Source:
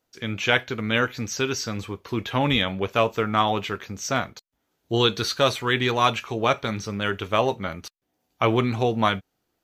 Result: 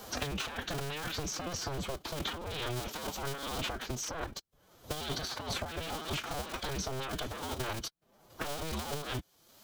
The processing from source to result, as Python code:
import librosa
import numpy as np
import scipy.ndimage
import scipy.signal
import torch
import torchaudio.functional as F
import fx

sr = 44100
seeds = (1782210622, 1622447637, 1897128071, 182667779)

y = fx.cycle_switch(x, sr, every=2, mode='inverted')
y = fx.peak_eq(y, sr, hz=2100.0, db=-10.5, octaves=0.25)
y = fx.over_compress(y, sr, threshold_db=-32.0, ratio=-1.0)
y = fx.pitch_keep_formants(y, sr, semitones=4.5)
y = fx.band_squash(y, sr, depth_pct=100)
y = y * 10.0 ** (-6.5 / 20.0)